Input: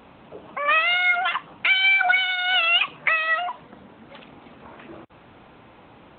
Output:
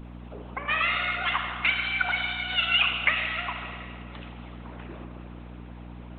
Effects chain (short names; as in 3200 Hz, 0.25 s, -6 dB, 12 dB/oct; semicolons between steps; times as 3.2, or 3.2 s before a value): Schroeder reverb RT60 2.2 s, combs from 27 ms, DRR 0 dB; hum 60 Hz, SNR 11 dB; harmonic-percussive split harmonic -16 dB